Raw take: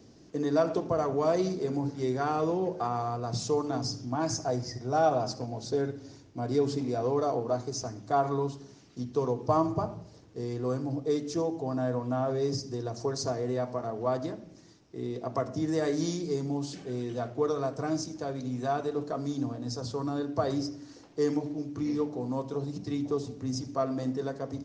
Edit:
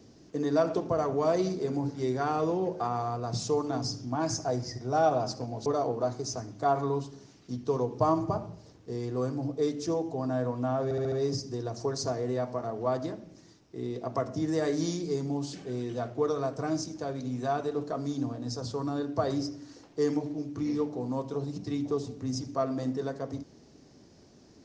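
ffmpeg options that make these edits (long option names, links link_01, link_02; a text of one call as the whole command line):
ffmpeg -i in.wav -filter_complex "[0:a]asplit=6[link_01][link_02][link_03][link_04][link_05][link_06];[link_01]atrim=end=5.662[link_07];[link_02]atrim=start=7.138:end=12.392[link_08];[link_03]atrim=start=12.318:end=12.392[link_09];[link_04]atrim=start=12.318:end=12.392[link_10];[link_05]atrim=start=12.318:end=12.392[link_11];[link_06]atrim=start=12.318[link_12];[link_07][link_08]acrossfade=duration=0.004:curve1=hsin:curve2=hsin[link_13];[link_13][link_09]acrossfade=duration=0.004:curve1=hsin:curve2=hsin[link_14];[link_14][link_10]acrossfade=duration=0.004:curve1=hsin:curve2=hsin[link_15];[link_15][link_11]acrossfade=duration=0.004:curve1=hsin:curve2=hsin[link_16];[link_16][link_12]acrossfade=duration=0.004:curve1=hsin:curve2=hsin" out.wav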